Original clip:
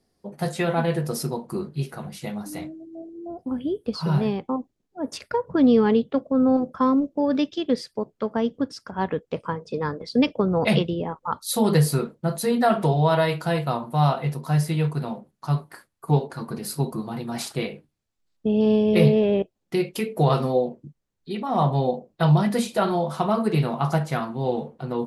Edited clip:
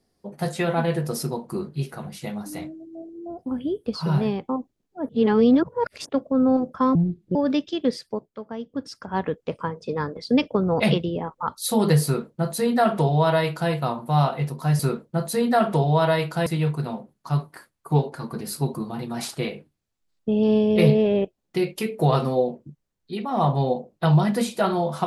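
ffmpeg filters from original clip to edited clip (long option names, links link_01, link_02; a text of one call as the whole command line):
ffmpeg -i in.wav -filter_complex "[0:a]asplit=9[link_01][link_02][link_03][link_04][link_05][link_06][link_07][link_08][link_09];[link_01]atrim=end=5.092[link_10];[link_02]atrim=start=5.088:end=6.092,asetpts=PTS-STARTPTS,areverse[link_11];[link_03]atrim=start=6.088:end=6.954[link_12];[link_04]atrim=start=6.95:end=7.2,asetpts=PTS-STARTPTS,asetrate=27342,aresample=44100,atrim=end_sample=17782,asetpts=PTS-STARTPTS[link_13];[link_05]atrim=start=7.196:end=8.15,asetpts=PTS-STARTPTS,afade=type=out:start_time=0.714:duration=0.24:curve=qsin:silence=0.334965[link_14];[link_06]atrim=start=8.15:end=8.56,asetpts=PTS-STARTPTS,volume=-9.5dB[link_15];[link_07]atrim=start=8.56:end=14.642,asetpts=PTS-STARTPTS,afade=type=in:duration=0.24:curve=qsin:silence=0.334965[link_16];[link_08]atrim=start=11.888:end=13.562[link_17];[link_09]atrim=start=14.638[link_18];[link_10][link_11]acrossfade=duration=0.004:curve1=hsin:curve2=hsin[link_19];[link_19][link_12]acrossfade=duration=0.004:curve1=hsin:curve2=hsin[link_20];[link_20][link_13]acrossfade=duration=0.004:curve1=hsin:curve2=hsin[link_21];[link_14][link_15][link_16]concat=n=3:v=0:a=1[link_22];[link_21][link_22]acrossfade=duration=0.004:curve1=hsin:curve2=hsin[link_23];[link_23][link_17]acrossfade=duration=0.004:curve1=hsin:curve2=hsin[link_24];[link_24][link_18]acrossfade=duration=0.004:curve1=hsin:curve2=hsin" out.wav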